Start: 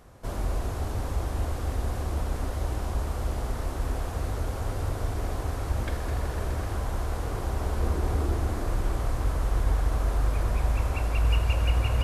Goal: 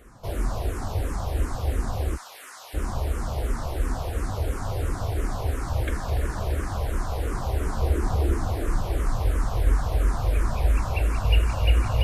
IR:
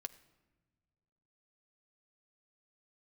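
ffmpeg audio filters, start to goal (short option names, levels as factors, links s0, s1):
-filter_complex "[0:a]asplit=3[s0][s1][s2];[s0]afade=t=out:st=2.15:d=0.02[s3];[s1]highpass=1400,afade=t=in:st=2.15:d=0.02,afade=t=out:st=2.73:d=0.02[s4];[s2]afade=t=in:st=2.73:d=0.02[s5];[s3][s4][s5]amix=inputs=3:normalize=0,asplit=2[s6][s7];[s7]afreqshift=-2.9[s8];[s6][s8]amix=inputs=2:normalize=1,volume=1.88"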